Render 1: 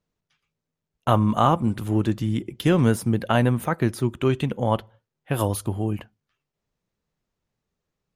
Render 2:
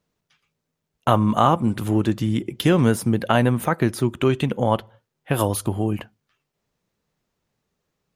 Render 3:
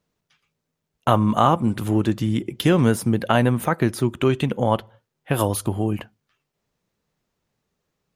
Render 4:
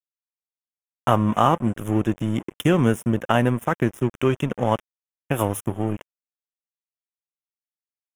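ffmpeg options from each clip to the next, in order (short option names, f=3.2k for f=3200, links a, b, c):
-filter_complex "[0:a]lowshelf=f=75:g=-8.5,asplit=2[a][b];[b]acompressor=threshold=-27dB:ratio=6,volume=1dB[c];[a][c]amix=inputs=2:normalize=0"
-af anull
-af "aeval=exprs='sgn(val(0))*max(abs(val(0))-0.0282,0)':c=same,asuperstop=centerf=4400:order=4:qfactor=1.8"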